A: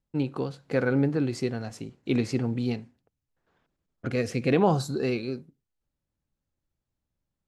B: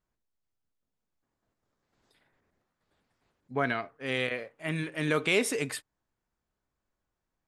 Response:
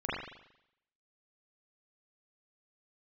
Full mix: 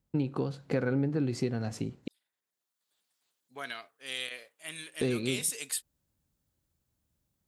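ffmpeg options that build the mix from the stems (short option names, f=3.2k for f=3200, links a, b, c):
-filter_complex "[0:a]highpass=48,volume=1.5dB,asplit=3[a][b][c];[a]atrim=end=2.08,asetpts=PTS-STARTPTS,afade=t=out:st=2.076:d=0.004:c=hsin[d];[b]atrim=start=2.08:end=5.01,asetpts=PTS-STARTPTS,volume=0[e];[c]atrim=start=5.01,asetpts=PTS-STARTPTS,afade=t=in:d=0.004:c=hsin[f];[d][e][f]concat=n=3:v=0:a=1[g];[1:a]highpass=f=880:p=1,highshelf=f=2.6k:g=9,aexciter=amount=2.6:drive=4.5:freq=3k,volume=-10.5dB,afade=t=in:st=2.43:d=0.55:silence=0.398107[h];[g][h]amix=inputs=2:normalize=0,lowshelf=f=340:g=5,acompressor=threshold=-28dB:ratio=3"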